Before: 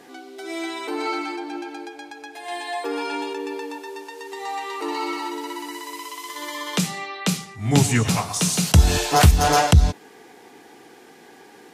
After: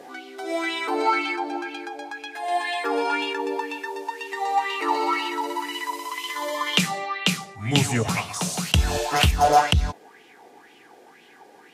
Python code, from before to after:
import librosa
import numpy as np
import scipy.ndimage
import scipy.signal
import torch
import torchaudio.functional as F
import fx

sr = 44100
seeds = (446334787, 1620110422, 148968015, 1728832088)

y = fx.rider(x, sr, range_db=3, speed_s=2.0)
y = fx.bell_lfo(y, sr, hz=2.0, low_hz=550.0, high_hz=3000.0, db=14)
y = F.gain(torch.from_numpy(y), -4.5).numpy()